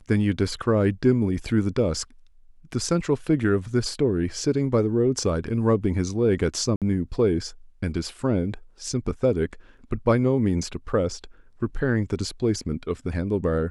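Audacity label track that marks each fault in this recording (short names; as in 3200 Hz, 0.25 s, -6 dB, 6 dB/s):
6.760000	6.820000	gap 57 ms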